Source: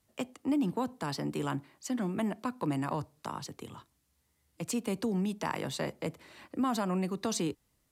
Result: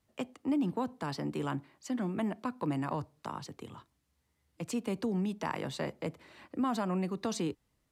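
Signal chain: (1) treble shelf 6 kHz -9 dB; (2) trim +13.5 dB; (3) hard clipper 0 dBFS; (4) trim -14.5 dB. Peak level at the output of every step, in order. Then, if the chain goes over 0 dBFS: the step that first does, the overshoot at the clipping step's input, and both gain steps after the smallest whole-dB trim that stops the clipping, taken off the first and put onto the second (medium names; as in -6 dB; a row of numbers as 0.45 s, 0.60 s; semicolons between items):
-19.5 dBFS, -6.0 dBFS, -6.0 dBFS, -20.5 dBFS; nothing clips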